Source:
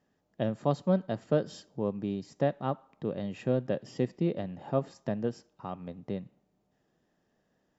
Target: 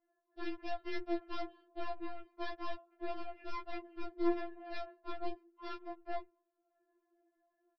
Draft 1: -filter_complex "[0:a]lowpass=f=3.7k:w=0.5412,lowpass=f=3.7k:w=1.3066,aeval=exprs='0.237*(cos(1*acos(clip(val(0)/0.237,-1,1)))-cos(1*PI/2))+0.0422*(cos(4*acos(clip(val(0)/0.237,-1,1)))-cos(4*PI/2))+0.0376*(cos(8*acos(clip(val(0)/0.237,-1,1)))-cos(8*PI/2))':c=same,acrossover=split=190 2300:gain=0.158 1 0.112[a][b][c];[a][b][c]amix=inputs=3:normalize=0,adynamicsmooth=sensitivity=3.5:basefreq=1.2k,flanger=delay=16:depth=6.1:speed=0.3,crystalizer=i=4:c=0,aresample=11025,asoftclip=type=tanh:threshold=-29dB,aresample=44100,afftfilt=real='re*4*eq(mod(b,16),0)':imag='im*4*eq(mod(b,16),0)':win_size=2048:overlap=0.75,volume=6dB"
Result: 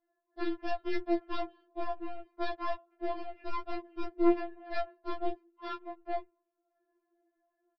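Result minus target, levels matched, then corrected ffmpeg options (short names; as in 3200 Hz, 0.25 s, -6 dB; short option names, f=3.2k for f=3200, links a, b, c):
soft clip: distortion -5 dB
-filter_complex "[0:a]lowpass=f=3.7k:w=0.5412,lowpass=f=3.7k:w=1.3066,aeval=exprs='0.237*(cos(1*acos(clip(val(0)/0.237,-1,1)))-cos(1*PI/2))+0.0422*(cos(4*acos(clip(val(0)/0.237,-1,1)))-cos(4*PI/2))+0.0376*(cos(8*acos(clip(val(0)/0.237,-1,1)))-cos(8*PI/2))':c=same,acrossover=split=190 2300:gain=0.158 1 0.112[a][b][c];[a][b][c]amix=inputs=3:normalize=0,adynamicsmooth=sensitivity=3.5:basefreq=1.2k,flanger=delay=16:depth=6.1:speed=0.3,crystalizer=i=4:c=0,aresample=11025,asoftclip=type=tanh:threshold=-38.5dB,aresample=44100,afftfilt=real='re*4*eq(mod(b,16),0)':imag='im*4*eq(mod(b,16),0)':win_size=2048:overlap=0.75,volume=6dB"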